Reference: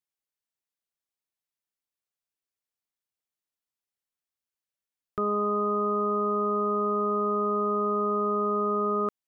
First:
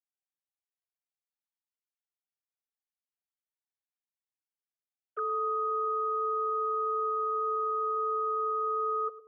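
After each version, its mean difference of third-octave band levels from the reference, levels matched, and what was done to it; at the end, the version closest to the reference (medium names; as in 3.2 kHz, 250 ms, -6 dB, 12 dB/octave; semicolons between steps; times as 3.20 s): 8.5 dB: formants replaced by sine waves; peaking EQ 240 Hz +10 dB 1.8 oct; peak limiter -25.5 dBFS, peak gain reduction 7 dB; on a send: band-passed feedback delay 107 ms, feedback 42%, band-pass 440 Hz, level -13.5 dB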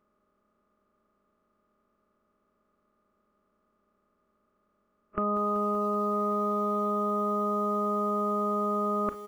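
5.5 dB: spectral levelling over time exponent 0.2; spectral noise reduction 30 dB; comb 3.5 ms, depth 60%; bit-crushed delay 191 ms, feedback 80%, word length 8-bit, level -13.5 dB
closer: second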